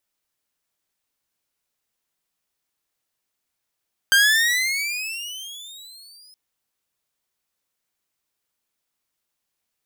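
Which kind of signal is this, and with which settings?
gliding synth tone saw, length 2.22 s, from 1570 Hz, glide +20.5 st, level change -35 dB, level -9 dB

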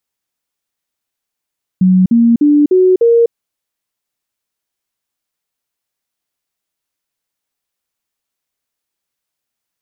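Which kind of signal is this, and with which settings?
stepped sine 185 Hz up, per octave 3, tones 5, 0.25 s, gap 0.05 s -5.5 dBFS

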